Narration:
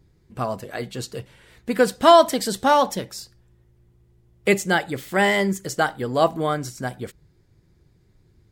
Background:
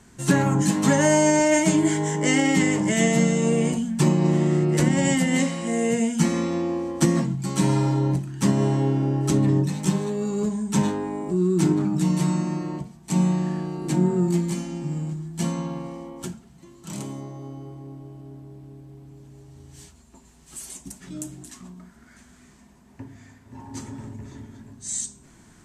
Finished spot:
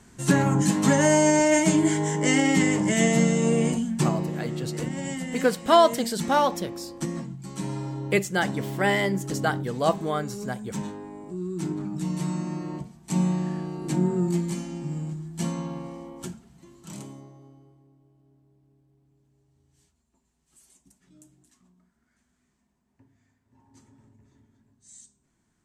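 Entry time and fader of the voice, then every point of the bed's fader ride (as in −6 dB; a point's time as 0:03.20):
3.65 s, −4.5 dB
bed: 0:03.93 −1 dB
0:04.32 −11 dB
0:11.51 −11 dB
0:12.77 −3 dB
0:16.76 −3 dB
0:17.92 −20.5 dB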